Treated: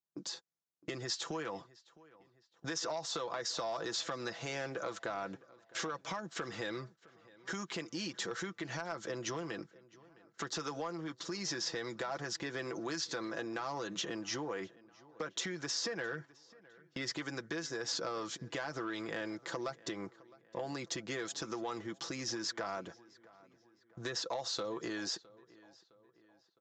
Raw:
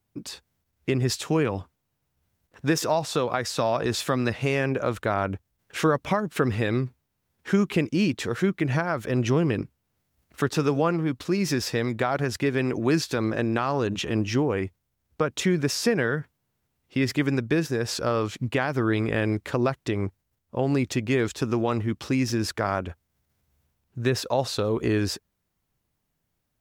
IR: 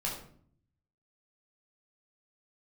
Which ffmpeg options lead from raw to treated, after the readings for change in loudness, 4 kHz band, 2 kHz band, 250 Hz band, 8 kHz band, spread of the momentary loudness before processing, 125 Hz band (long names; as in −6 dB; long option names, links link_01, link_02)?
−13.5 dB, −6.0 dB, −11.0 dB, −17.5 dB, −6.0 dB, 7 LU, −22.5 dB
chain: -filter_complex "[0:a]highpass=150,equalizer=frequency=2500:width_type=o:width=0.44:gain=-10,aecho=1:1:6:0.55,acrossover=split=790|4200[link_01][link_02][link_03];[link_01]acompressor=threshold=-31dB:ratio=4[link_04];[link_02]acompressor=threshold=-30dB:ratio=4[link_05];[link_03]acompressor=threshold=-39dB:ratio=4[link_06];[link_04][link_05][link_06]amix=inputs=3:normalize=0,agate=range=-16dB:threshold=-45dB:ratio=16:detection=peak,aresample=16000,asoftclip=type=tanh:threshold=-19.5dB,aresample=44100,acompressor=threshold=-28dB:ratio=6,bass=frequency=250:gain=-6,treble=frequency=4000:gain=6,asplit=2[link_07][link_08];[link_08]adelay=661,lowpass=frequency=3500:poles=1,volume=-21.5dB,asplit=2[link_09][link_10];[link_10]adelay=661,lowpass=frequency=3500:poles=1,volume=0.5,asplit=2[link_11][link_12];[link_12]adelay=661,lowpass=frequency=3500:poles=1,volume=0.5,asplit=2[link_13][link_14];[link_14]adelay=661,lowpass=frequency=3500:poles=1,volume=0.5[link_15];[link_07][link_09][link_11][link_13][link_15]amix=inputs=5:normalize=0,volume=-5.5dB"